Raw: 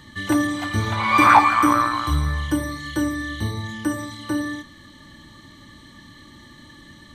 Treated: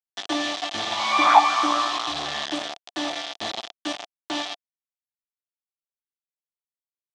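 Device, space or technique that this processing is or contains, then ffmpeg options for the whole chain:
hand-held game console: -af "acrusher=bits=3:mix=0:aa=0.000001,highpass=420,equalizer=frequency=470:width_type=q:width=4:gain=-9,equalizer=frequency=710:width_type=q:width=4:gain=10,equalizer=frequency=1000:width_type=q:width=4:gain=-3,equalizer=frequency=1500:width_type=q:width=4:gain=-7,equalizer=frequency=2100:width_type=q:width=4:gain=-4,equalizer=frequency=3400:width_type=q:width=4:gain=7,lowpass=frequency=5900:width=0.5412,lowpass=frequency=5900:width=1.3066,volume=-2dB"

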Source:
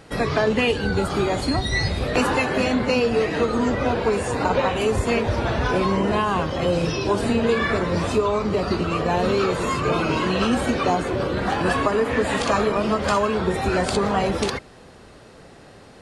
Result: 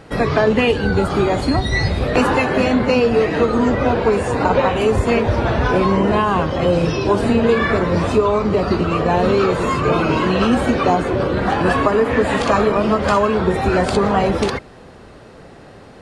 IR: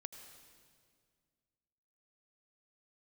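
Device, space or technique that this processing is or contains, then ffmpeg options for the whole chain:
behind a face mask: -af "highshelf=frequency=3300:gain=-8,volume=5.5dB"

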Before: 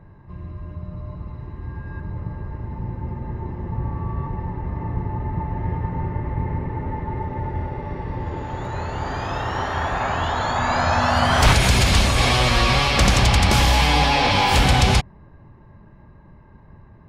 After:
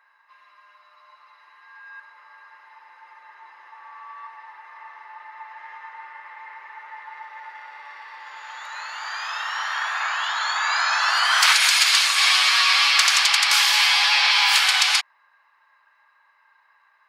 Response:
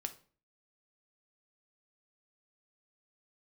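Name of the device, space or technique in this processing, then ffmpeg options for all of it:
headphones lying on a table: -filter_complex "[0:a]highpass=frequency=1200:width=0.5412,highpass=frequency=1200:width=1.3066,equalizer=frequency=4600:width_type=o:width=0.33:gain=4,asettb=1/sr,asplit=3[link_01][link_02][link_03];[link_01]atrim=end=11.874[link_04];[link_02]atrim=start=11.87:end=12.68,asetpts=PTS-STARTPTS,afade=type=in:duration=0.004:curve=qsin,afade=type=out:start_time=0.806:duration=0.004:curve=qsin,lowshelf=frequency=130:gain=-11.5[link_05];[link_03]atrim=start=12.676[link_06];[link_04][link_05]acrossfade=duration=0.004:curve1=hsin:curve2=qsin[link_07];[link_07][link_06]acrossfade=duration=0.004:curve1=qsin:curve2=hsin,volume=4dB"

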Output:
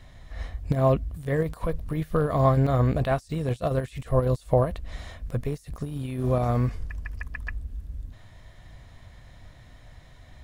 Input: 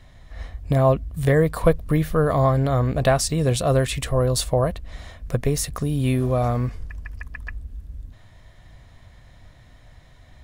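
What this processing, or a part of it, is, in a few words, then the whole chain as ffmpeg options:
de-esser from a sidechain: -filter_complex "[0:a]asplit=2[link_01][link_02];[link_02]highpass=frequency=6500:width=0.5412,highpass=frequency=6500:width=1.3066,apad=whole_len=460044[link_03];[link_01][link_03]sidechaincompress=threshold=-56dB:ratio=12:attack=2.6:release=20"

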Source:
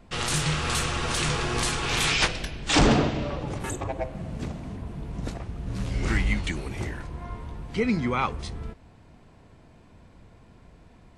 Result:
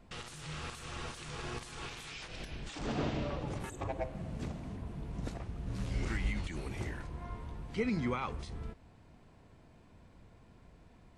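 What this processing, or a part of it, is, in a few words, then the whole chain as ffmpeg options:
de-esser from a sidechain: -filter_complex "[0:a]asplit=2[link_01][link_02];[link_02]highpass=5000,apad=whole_len=493024[link_03];[link_01][link_03]sidechaincompress=threshold=-42dB:ratio=12:attack=0.68:release=95,volume=-6.5dB"

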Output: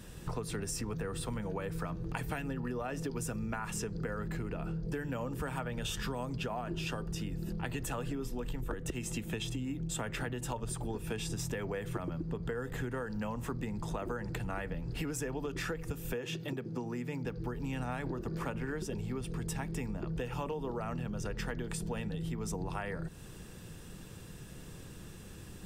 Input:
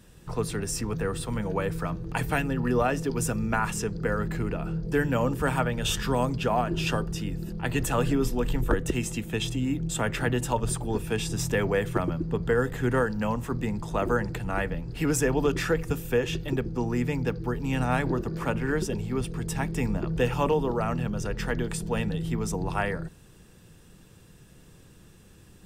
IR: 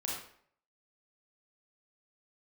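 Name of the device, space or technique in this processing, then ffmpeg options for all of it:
serial compression, leveller first: -filter_complex "[0:a]acompressor=threshold=-28dB:ratio=2.5,acompressor=threshold=-39dB:ratio=6,asettb=1/sr,asplit=3[link_01][link_02][link_03];[link_01]atrim=end=16.134[link_04];[link_02]atrim=start=16.13:end=17.25,asetpts=PTS-STARTPTS,afade=type=in:duration=0.004:curve=qsin,afade=type=out:start_time=1.116:duration=0.004:curve=qsin,highpass=frequency=120:width=0.5412,highpass=frequency=120:width=1.3066[link_05];[link_03]atrim=start=17.246[link_06];[link_04][link_05]acrossfade=duration=0.004:curve1=hsin:curve2=qsin[link_07];[link_07][link_06]acrossfade=duration=0.004:curve1=qsin:curve2=hsin,volume=4.5dB"

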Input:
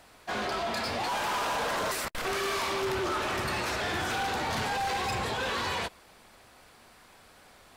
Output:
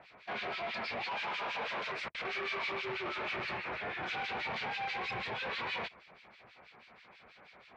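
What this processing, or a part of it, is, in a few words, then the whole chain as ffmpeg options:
guitar amplifier with harmonic tremolo: -filter_complex "[0:a]acrossover=split=1800[link_01][link_02];[link_01]aeval=exprs='val(0)*(1-1/2+1/2*cos(2*PI*6.2*n/s))':channel_layout=same[link_03];[link_02]aeval=exprs='val(0)*(1-1/2-1/2*cos(2*PI*6.2*n/s))':channel_layout=same[link_04];[link_03][link_04]amix=inputs=2:normalize=0,asoftclip=type=tanh:threshold=-37.5dB,highpass=84,equalizer=frequency=89:width_type=q:width=4:gain=-10,equalizer=frequency=280:width_type=q:width=4:gain=-7,equalizer=frequency=2300:width_type=q:width=4:gain=9,lowpass=frequency=4300:width=0.5412,lowpass=frequency=4300:width=1.3066,asettb=1/sr,asplit=3[link_05][link_06][link_07];[link_05]atrim=end=3.574[link_08];[link_06]atrim=start=3.57:end=4.03,asetpts=PTS-STARTPTS,afade=type=in:duration=0.004:curve=qsin,afade=type=out:start_time=0.456:duration=0.004:curve=qsin,acrossover=split=2500[link_09][link_10];[link_10]acompressor=threshold=-56dB:ratio=4:attack=1:release=60[link_11];[link_09][link_11]amix=inputs=2:normalize=0[link_12];[link_07]atrim=start=4.026[link_13];[link_08][link_12]acrossfade=duration=0.004:curve1=hsin:curve2=qsin[link_14];[link_14][link_13]acrossfade=duration=0.004:curve1=qsin:curve2=hsin,volume=2dB"

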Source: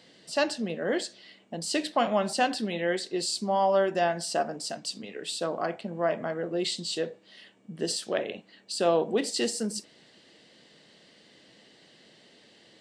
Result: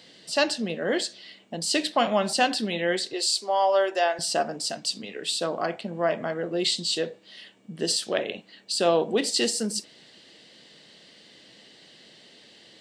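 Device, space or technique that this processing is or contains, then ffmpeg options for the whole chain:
presence and air boost: -filter_complex "[0:a]asettb=1/sr,asplit=3[link_01][link_02][link_03];[link_01]atrim=end=3.134[link_04];[link_02]atrim=start=3.13:end=4.19,asetpts=PTS-STARTPTS,afade=type=in:duration=0.004:curve=qsin,afade=type=out:start_time=1.056:duration=0.004:curve=qsin,highpass=frequency=390:width=0.5412,highpass=frequency=390:width=1.3066[link_05];[link_03]atrim=start=4.186[link_06];[link_04][link_05]acrossfade=duration=0.004:curve1=hsin:curve2=qsin[link_07];[link_07][link_06]acrossfade=duration=0.004:curve1=qsin:curve2=hsin,equalizer=frequency=3700:width_type=o:width=1.5:gain=4.5,highshelf=frequency=10000:gain=5.5,volume=2dB"

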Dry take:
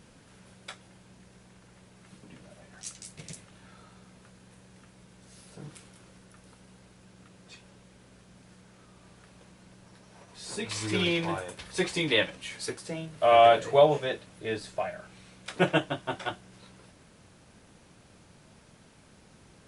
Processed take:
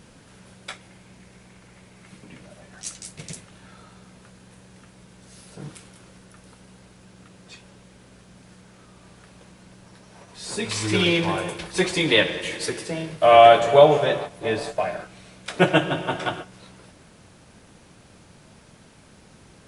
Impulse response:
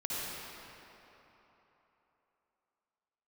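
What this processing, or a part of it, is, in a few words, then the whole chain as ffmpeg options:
keyed gated reverb: -filter_complex "[0:a]asettb=1/sr,asplit=3[link_01][link_02][link_03];[link_01]atrim=end=0.704[link_04];[link_02]atrim=start=0.7:end=2.46,asetpts=PTS-STARTPTS,afade=type=in:duration=0.004:curve=qsin,afade=type=out:start_time=1.756:duration=0.004:curve=qsin,equalizer=frequency=2200:width_type=o:width=0.35:gain=5.5[link_05];[link_03]atrim=start=2.456[link_06];[link_04][link_05]acrossfade=duration=0.004:curve1=hsin:curve2=qsin[link_07];[link_07][link_06]acrossfade=duration=0.004:curve1=qsin:curve2=hsin,asplit=3[link_08][link_09][link_10];[1:a]atrim=start_sample=2205[link_11];[link_09][link_11]afir=irnorm=-1:irlink=0[link_12];[link_10]apad=whole_len=867535[link_13];[link_12][link_13]sidechaingate=range=-19dB:threshold=-44dB:ratio=16:detection=peak,volume=-13dB[link_14];[link_08][link_14]amix=inputs=2:normalize=0,volume=5.5dB"

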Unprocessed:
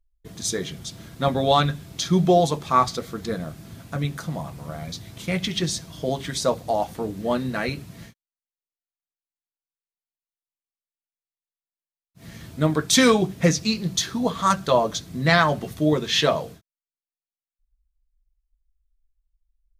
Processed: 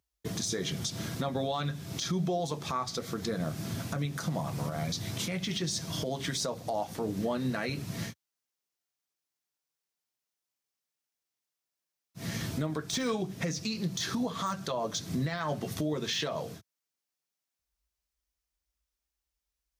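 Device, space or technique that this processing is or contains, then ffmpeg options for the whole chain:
broadcast voice chain: -af "highpass=frequency=86:width=0.5412,highpass=frequency=86:width=1.3066,deesser=0.55,acompressor=threshold=-35dB:ratio=4,equalizer=frequency=5600:width_type=o:width=0.52:gain=4.5,alimiter=level_in=5dB:limit=-24dB:level=0:latency=1:release=100,volume=-5dB,volume=6.5dB"

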